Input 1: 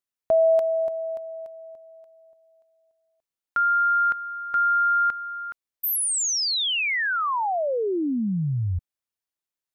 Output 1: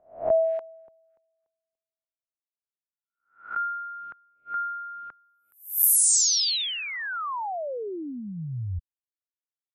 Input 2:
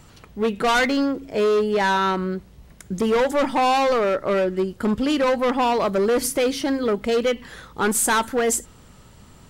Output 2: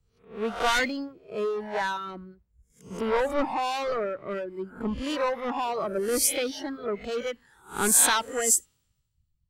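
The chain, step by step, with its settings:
peak hold with a rise ahead of every peak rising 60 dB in 0.75 s
reverb reduction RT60 1.9 s
multiband upward and downward expander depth 100%
level −8 dB

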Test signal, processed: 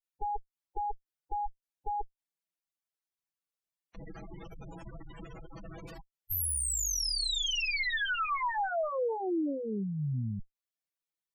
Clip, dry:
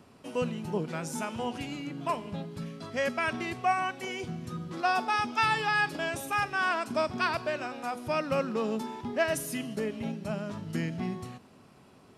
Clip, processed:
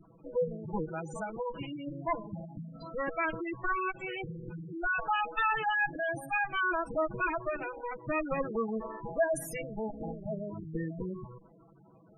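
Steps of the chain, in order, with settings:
lower of the sound and its delayed copy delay 6.1 ms
dynamic equaliser 170 Hz, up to −6 dB, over −50 dBFS, Q 4.6
gate on every frequency bin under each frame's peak −10 dB strong
level +1.5 dB

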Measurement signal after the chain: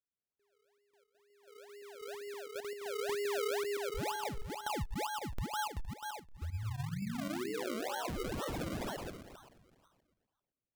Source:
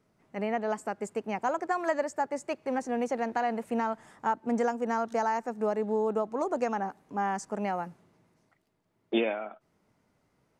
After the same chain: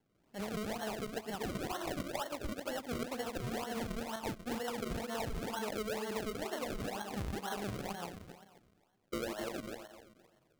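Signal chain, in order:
feedback delay that plays each chunk backwards 130 ms, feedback 56%, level −1.5 dB
downward compressor 6 to 1, threshold −28 dBFS
Butterworth low-pass 3,900 Hz 48 dB per octave
sample-and-hold swept by an LFO 35×, swing 100% 2.1 Hz
level −7 dB

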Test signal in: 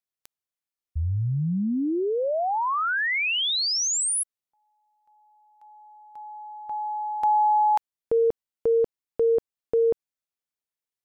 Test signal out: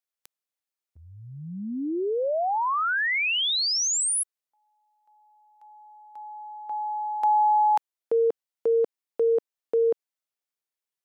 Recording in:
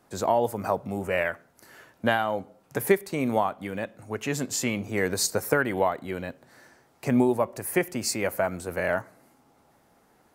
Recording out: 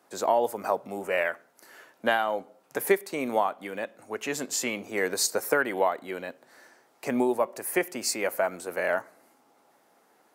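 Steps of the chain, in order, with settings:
high-pass filter 320 Hz 12 dB per octave

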